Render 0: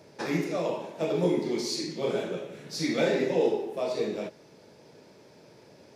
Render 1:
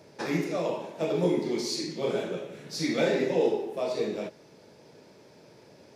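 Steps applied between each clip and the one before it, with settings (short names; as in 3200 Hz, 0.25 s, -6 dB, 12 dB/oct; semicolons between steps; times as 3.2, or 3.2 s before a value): nothing audible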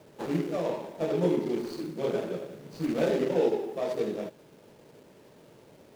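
median filter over 25 samples; bit-crush 10-bit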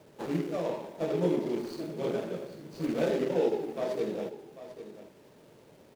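echo 0.794 s -13 dB; gain -2 dB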